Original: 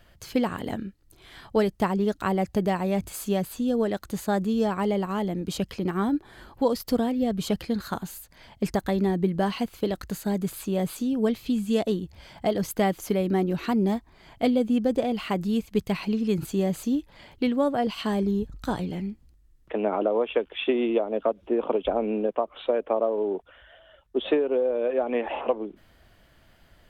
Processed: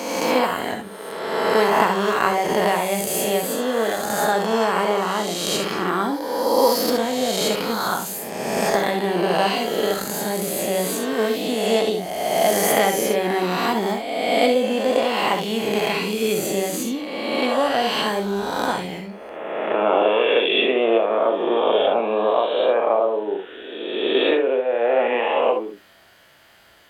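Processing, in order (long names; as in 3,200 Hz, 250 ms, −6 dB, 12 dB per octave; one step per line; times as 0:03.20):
peak hold with a rise ahead of every peak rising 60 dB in 1.72 s
high-pass filter 740 Hz 6 dB per octave
reverb whose tail is shaped and stops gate 90 ms rising, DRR 5 dB
level +6.5 dB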